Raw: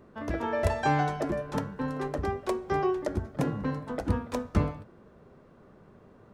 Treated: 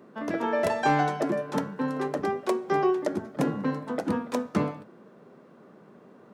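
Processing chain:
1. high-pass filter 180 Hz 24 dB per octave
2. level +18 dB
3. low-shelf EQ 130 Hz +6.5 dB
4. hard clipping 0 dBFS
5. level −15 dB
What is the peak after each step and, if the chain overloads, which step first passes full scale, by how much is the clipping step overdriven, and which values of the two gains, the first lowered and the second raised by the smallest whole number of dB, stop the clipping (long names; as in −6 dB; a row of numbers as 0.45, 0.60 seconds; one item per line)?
−12.5, +5.5, +5.0, 0.0, −15.0 dBFS
step 2, 5.0 dB
step 2 +13 dB, step 5 −10 dB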